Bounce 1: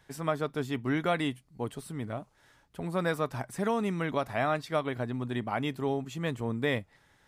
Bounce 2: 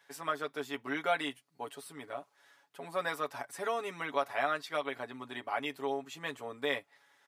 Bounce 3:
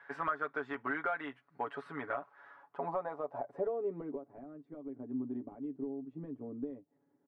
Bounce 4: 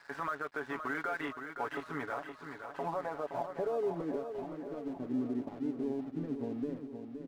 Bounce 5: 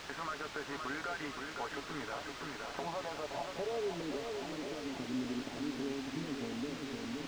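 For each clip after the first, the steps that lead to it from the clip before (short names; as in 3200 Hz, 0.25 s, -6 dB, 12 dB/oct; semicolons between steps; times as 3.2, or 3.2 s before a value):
Bessel high-pass 620 Hz, order 2; bell 8200 Hz -2.5 dB; comb 7.1 ms, depth 73%; gain -2 dB
compressor 12:1, threshold -40 dBFS, peak gain reduction 16 dB; overloaded stage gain 35.5 dB; low-pass sweep 1500 Hz -> 280 Hz, 2.27–4.44; gain +5.5 dB
limiter -32 dBFS, peak gain reduction 9.5 dB; crossover distortion -60 dBFS; on a send: feedback echo 0.519 s, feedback 56%, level -8 dB; on the sum: gain +5.5 dB
recorder AGC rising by 68 dB/s; requantised 6-bit, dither triangular; air absorption 160 m; gain -3.5 dB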